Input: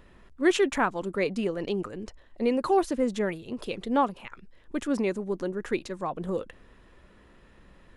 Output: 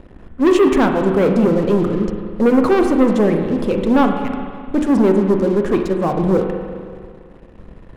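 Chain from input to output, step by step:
tilt shelving filter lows +8.5 dB, about 800 Hz
mains-hum notches 60/120/180/240/300/360 Hz
leveller curve on the samples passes 3
spring reverb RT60 2 s, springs 34/42 ms, chirp 65 ms, DRR 4 dB

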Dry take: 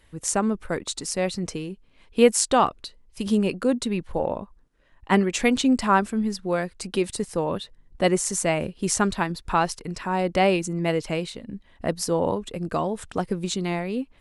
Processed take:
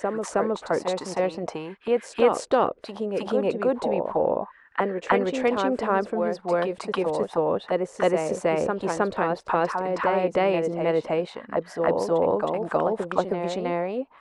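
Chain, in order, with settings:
envelope filter 500–1,800 Hz, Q 4.6, down, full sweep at −22 dBFS
backwards echo 316 ms −6 dB
every bin compressed towards the loudest bin 2 to 1

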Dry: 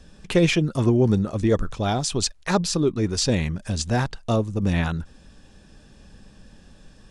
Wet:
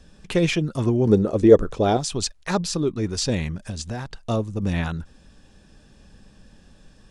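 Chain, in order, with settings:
0:01.07–0:01.97: parametric band 430 Hz +13 dB 1.4 octaves
0:03.66–0:04.11: downward compressor 6 to 1, threshold −25 dBFS, peak gain reduction 8 dB
level −2 dB

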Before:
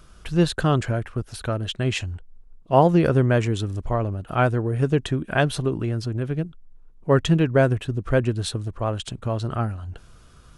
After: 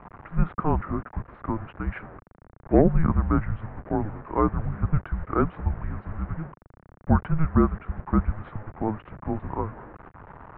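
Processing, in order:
linear delta modulator 64 kbit/s, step −31.5 dBFS
single-sideband voice off tune −320 Hz 200–2,000 Hz

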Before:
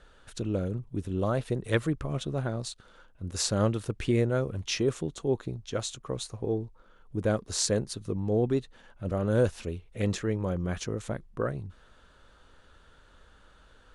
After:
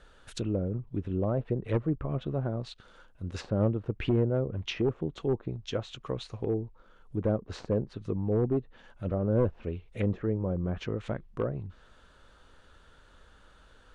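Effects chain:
wavefolder on the positive side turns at −21.5 dBFS
treble cut that deepens with the level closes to 720 Hz, closed at −25.5 dBFS
dynamic equaliser 2,800 Hz, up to +6 dB, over −58 dBFS, Q 1.2

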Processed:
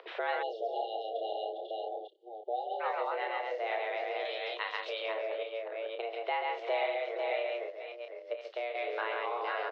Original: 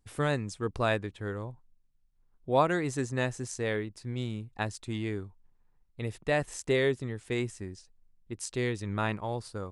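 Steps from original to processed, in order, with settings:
delay that plays each chunk backwards 273 ms, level −5.5 dB
double-tracking delay 30 ms −6 dB
multi-tap delay 135/494 ms −3.5/−7 dB
upward compression, threshold −25 dBFS
sample-and-hold tremolo
downward compressor 3 to 1, threshold −33 dBFS, peak gain reduction 10 dB
0:07.70–0:08.75: noise gate −34 dBFS, range −7 dB
single-sideband voice off tune +230 Hz 190–3,400 Hz
0:00.42–0:02.80: time-frequency box erased 850–2,800 Hz
0:04.25–0:05.06: spectral tilt +4 dB per octave
level +2.5 dB

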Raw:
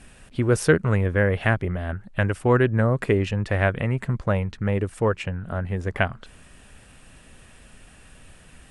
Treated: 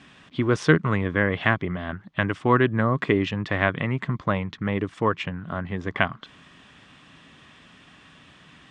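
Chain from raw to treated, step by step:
loudspeaker in its box 120–6,300 Hz, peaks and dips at 160 Hz +5 dB, 290 Hz +6 dB, 510 Hz −4 dB, 1,100 Hz +9 dB, 2,000 Hz +5 dB, 3,400 Hz +9 dB
level −1.5 dB

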